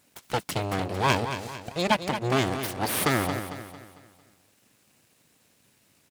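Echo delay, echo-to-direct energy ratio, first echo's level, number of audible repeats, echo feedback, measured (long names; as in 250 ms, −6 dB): 225 ms, −8.5 dB, −9.5 dB, 4, 42%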